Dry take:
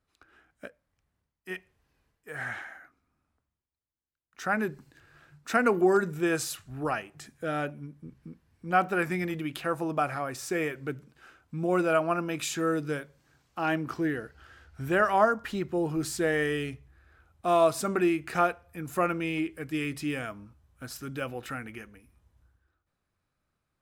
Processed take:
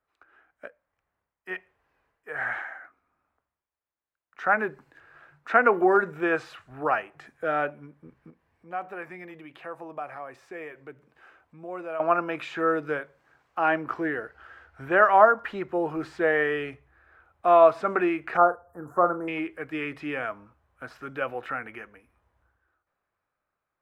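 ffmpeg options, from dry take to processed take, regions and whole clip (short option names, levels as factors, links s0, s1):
-filter_complex "[0:a]asettb=1/sr,asplit=3[s0][s1][s2];[s0]atrim=end=8.304[s3];[s1]atrim=start=8.3:end=12,asetpts=PTS-STARTPTS,afade=t=in:d=0.004:c=qsin,afade=t=out:st=3.696:d=0.004:c=qsin,equalizer=f=1400:w=5.5:g=-6.5,acompressor=threshold=0.00112:ratio=1.5:attack=3.2:release=140:knee=1:detection=peak[s4];[s2]atrim=start=11.996[s5];[s3][s4]acrossfade=d=0.004:c1=hsin:c2=qsin[s6];[s6][s5]acrossfade=d=0.004:c1=qsin:c2=hsin,asettb=1/sr,asplit=3[s7][s8][s9];[s7]atrim=end=18.374[s10];[s8]atrim=start=18.37:end=19.28,asetpts=PTS-STARTPTS,afade=t=in:d=0.004:c=qsin,afade=t=out:st=0.906:d=0.004:c=qsin,asuperstop=centerf=3100:order=8:qfactor=0.59,asplit=2[s11][s12];[s12]adelay=40,volume=0.251[s13];[s11][s13]amix=inputs=2:normalize=0,atrim=end_sample=40131[s14];[s9]atrim=start=19.276[s15];[s10][s14]acrossfade=d=0.004:c1=hsin:c2=qsin[s16];[s16][s15]acrossfade=d=0.004:c1=qsin:c2=hsin,acrossover=split=4500[s17][s18];[s18]acompressor=threshold=0.00141:ratio=4:attack=1:release=60[s19];[s17][s19]amix=inputs=2:normalize=0,acrossover=split=430 2300:gain=0.178 1 0.141[s20][s21][s22];[s20][s21][s22]amix=inputs=3:normalize=0,dynaudnorm=f=120:g=17:m=1.68,volume=1.41"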